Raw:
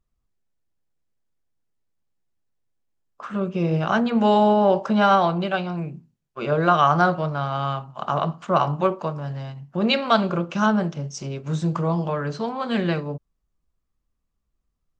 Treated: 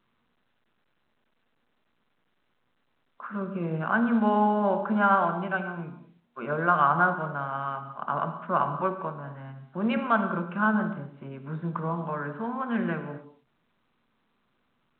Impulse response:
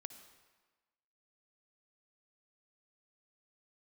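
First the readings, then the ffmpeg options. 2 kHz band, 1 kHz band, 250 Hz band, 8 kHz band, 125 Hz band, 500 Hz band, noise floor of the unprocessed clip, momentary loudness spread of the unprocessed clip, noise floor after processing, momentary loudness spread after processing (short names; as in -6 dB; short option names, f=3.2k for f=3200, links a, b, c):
-1.0 dB, -4.0 dB, -5.0 dB, n/a, -8.5 dB, -8.0 dB, -77 dBFS, 14 LU, -72 dBFS, 17 LU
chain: -filter_complex "[0:a]highpass=f=130:w=0.5412,highpass=f=130:w=1.3066,equalizer=f=240:t=q:w=4:g=7,equalizer=f=1k:t=q:w=4:g=7,equalizer=f=1.5k:t=q:w=4:g=9,lowpass=f=2.5k:w=0.5412,lowpass=f=2.5k:w=1.3066[a];[1:a]atrim=start_sample=2205,afade=t=out:st=0.32:d=0.01,atrim=end_sample=14553[b];[a][b]afir=irnorm=-1:irlink=0,volume=-4dB" -ar 8000 -c:a pcm_alaw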